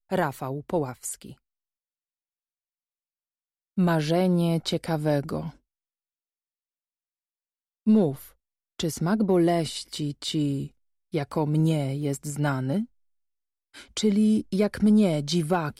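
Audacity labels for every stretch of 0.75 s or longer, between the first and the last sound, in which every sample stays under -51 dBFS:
1.380000	3.770000	silence
5.560000	7.860000	silence
12.860000	13.740000	silence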